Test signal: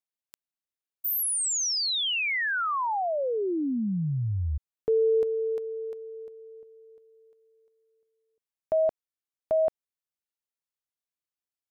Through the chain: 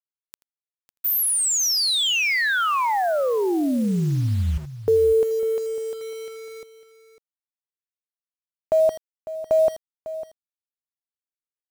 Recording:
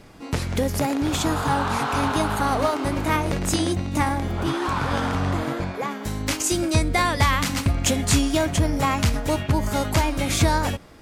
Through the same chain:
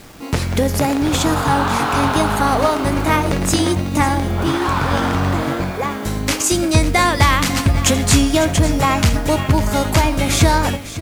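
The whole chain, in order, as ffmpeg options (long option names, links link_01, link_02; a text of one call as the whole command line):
ffmpeg -i in.wav -filter_complex "[0:a]asplit=2[link_01][link_02];[link_02]aecho=0:1:82|164:0.119|0.0226[link_03];[link_01][link_03]amix=inputs=2:normalize=0,acrusher=bits=7:mix=0:aa=0.000001,asplit=2[link_04][link_05];[link_05]aecho=0:1:551:0.2[link_06];[link_04][link_06]amix=inputs=2:normalize=0,volume=6dB" out.wav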